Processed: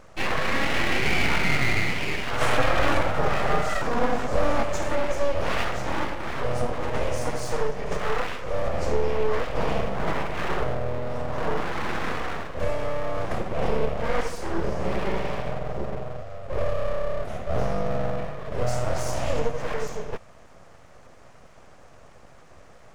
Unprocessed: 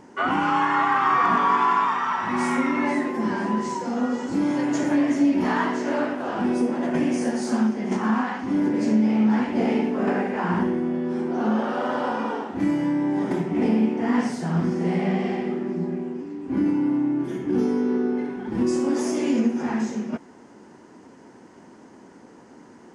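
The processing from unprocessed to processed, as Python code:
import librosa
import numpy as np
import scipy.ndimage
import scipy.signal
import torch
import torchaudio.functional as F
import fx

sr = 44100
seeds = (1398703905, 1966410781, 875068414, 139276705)

y = fx.peak_eq(x, sr, hz=580.0, db=7.0, octaves=2.9, at=(2.41, 4.63))
y = np.abs(y)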